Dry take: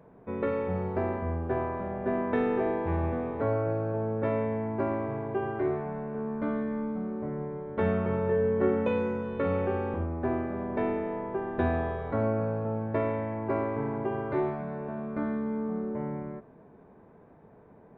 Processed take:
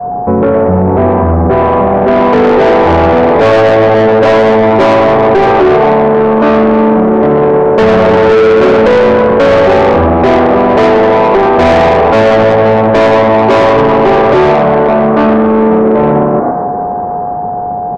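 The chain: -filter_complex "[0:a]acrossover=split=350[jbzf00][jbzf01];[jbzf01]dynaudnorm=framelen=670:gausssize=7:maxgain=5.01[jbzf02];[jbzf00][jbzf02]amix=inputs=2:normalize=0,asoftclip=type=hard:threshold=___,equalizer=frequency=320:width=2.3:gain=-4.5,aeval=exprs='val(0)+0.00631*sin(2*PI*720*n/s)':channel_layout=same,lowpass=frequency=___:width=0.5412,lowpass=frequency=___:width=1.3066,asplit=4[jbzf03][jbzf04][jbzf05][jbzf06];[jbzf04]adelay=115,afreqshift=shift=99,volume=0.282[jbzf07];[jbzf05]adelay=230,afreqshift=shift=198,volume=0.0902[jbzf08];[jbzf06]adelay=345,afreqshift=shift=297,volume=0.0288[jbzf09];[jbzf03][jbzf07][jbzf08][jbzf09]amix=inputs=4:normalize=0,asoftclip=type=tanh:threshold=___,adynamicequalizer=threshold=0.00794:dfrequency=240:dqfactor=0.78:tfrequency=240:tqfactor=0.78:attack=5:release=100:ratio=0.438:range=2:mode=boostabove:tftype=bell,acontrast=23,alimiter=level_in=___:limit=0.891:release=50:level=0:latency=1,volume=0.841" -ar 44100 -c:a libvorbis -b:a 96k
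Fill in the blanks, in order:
0.2, 1300, 1300, 0.0562, 22.4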